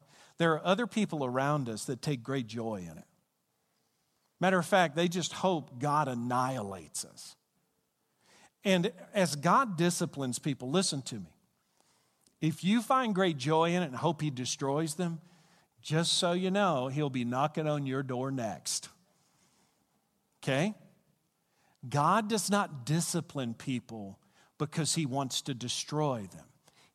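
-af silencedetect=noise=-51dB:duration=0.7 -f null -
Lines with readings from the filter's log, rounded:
silence_start: 3.03
silence_end: 4.41 | silence_duration: 1.38
silence_start: 7.33
silence_end: 8.26 | silence_duration: 0.93
silence_start: 18.93
silence_end: 20.43 | silence_duration: 1.50
silence_start: 20.87
silence_end: 21.76 | silence_duration: 0.89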